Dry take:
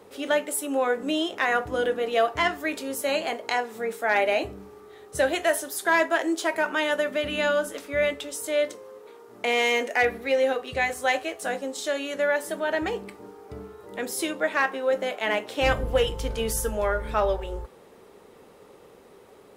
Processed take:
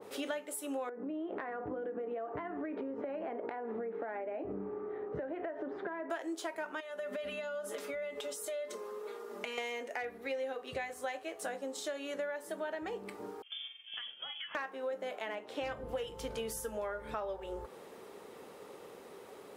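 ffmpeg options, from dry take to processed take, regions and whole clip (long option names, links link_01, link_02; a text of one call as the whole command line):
ffmpeg -i in.wav -filter_complex "[0:a]asettb=1/sr,asplit=3[link_01][link_02][link_03];[link_01]atrim=end=0.894[link_04];[link_02]atrim=start=0.89:end=6.1,asetpts=PTS-STARTPTS,afade=type=in:duration=0.004:curve=qsin,afade=type=out:start_time=5.206:duration=0.004:curve=qsin,lowpass=frequency=2100:width=0.5412,lowpass=frequency=2100:width=1.3066,equalizer=frequency=280:width_type=o:width=2.5:gain=10,acompressor=threshold=-29dB:ratio=16:attack=3.2:release=140:knee=1:detection=peak[link_05];[link_03]atrim=start=6.096[link_06];[link_04][link_05]acrossfade=duration=0.004:curve1=hsin:curve2=qsin[link_07];[link_07][link_06]acrossfade=duration=0.004:curve1=qsin:curve2=hsin,asettb=1/sr,asplit=3[link_08][link_09][link_10];[link_08]atrim=end=6.804[link_11];[link_09]atrim=start=6.8:end=9.58,asetpts=PTS-STARTPTS,afade=type=in:duration=0.004:curve=qsin,afade=type=out:start_time=2.776:duration=0.004:curve=qsin,equalizer=frequency=140:width_type=o:width=0.86:gain=-7.5,aecho=1:1:4.9:0.96,atrim=end_sample=122598,acompressor=threshold=-31dB:ratio=6:attack=3.2:release=140:knee=1:detection=peak[link_12];[link_10]atrim=start=9.576[link_13];[link_11][link_12]acrossfade=duration=0.004:curve1=hsin:curve2=qsin[link_14];[link_14][link_13]acrossfade=duration=0.004:curve1=qsin:curve2=hsin,asettb=1/sr,asplit=3[link_15][link_16][link_17];[link_15]atrim=end=13.424[link_18];[link_16]atrim=start=13.42:end=14.55,asetpts=PTS-STARTPTS,afade=type=in:duration=0.004:curve=qsin,afade=type=out:start_time=1.126:duration=0.004:curve=qsin,agate=range=-33dB:threshold=-38dB:ratio=3:release=100:detection=peak,acompressor=threshold=-38dB:ratio=12:attack=3.2:release=140:knee=1:detection=peak,lowpass=frequency=3100:width_type=q:width=0.5098,lowpass=frequency=3100:width_type=q:width=0.6013,lowpass=frequency=3100:width_type=q:width=0.9,lowpass=frequency=3100:width_type=q:width=2.563,afreqshift=-3600[link_19];[link_17]atrim=start=14.546[link_20];[link_18][link_19]acrossfade=duration=0.004:curve1=hsin:curve2=qsin[link_21];[link_21][link_20]acrossfade=duration=0.004:curve1=qsin:curve2=hsin,asettb=1/sr,asplit=3[link_22][link_23][link_24];[link_22]atrim=end=15.354[link_25];[link_23]atrim=start=15.35:end=15.89,asetpts=PTS-STARTPTS,afade=type=in:duration=0.004:curve=qsin,afade=type=out:start_time=0.536:duration=0.004:curve=qsin,highshelf=frequency=7300:gain=-9,asoftclip=type=hard:threshold=-13dB[link_26];[link_24]atrim=start=15.886[link_27];[link_25][link_26]acrossfade=duration=0.004:curve1=hsin:curve2=qsin[link_28];[link_28][link_27]acrossfade=duration=0.004:curve1=qsin:curve2=hsin,highpass=frequency=220:poles=1,acompressor=threshold=-37dB:ratio=6,adynamicequalizer=threshold=0.00282:dfrequency=1600:dqfactor=0.7:tfrequency=1600:tqfactor=0.7:attack=5:release=100:ratio=0.375:range=2.5:mode=cutabove:tftype=highshelf,volume=1dB" out.wav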